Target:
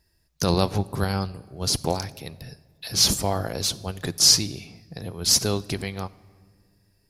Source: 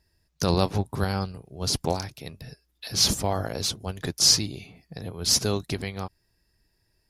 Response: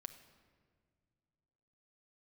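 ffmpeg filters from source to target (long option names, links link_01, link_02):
-filter_complex "[0:a]asplit=2[link_01][link_02];[1:a]atrim=start_sample=2205,highshelf=frequency=6300:gain=11[link_03];[link_02][link_03]afir=irnorm=-1:irlink=0,volume=-1.5dB[link_04];[link_01][link_04]amix=inputs=2:normalize=0,volume=-2dB"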